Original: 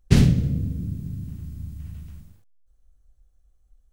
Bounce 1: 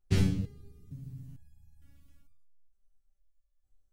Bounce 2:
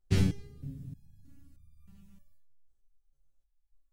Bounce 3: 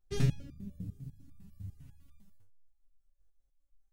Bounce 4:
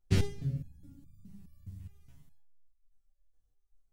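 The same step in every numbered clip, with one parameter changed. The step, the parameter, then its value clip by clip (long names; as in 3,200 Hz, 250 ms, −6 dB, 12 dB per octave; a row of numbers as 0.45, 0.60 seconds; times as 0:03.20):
step-sequenced resonator, speed: 2.2, 3.2, 10, 4.8 Hertz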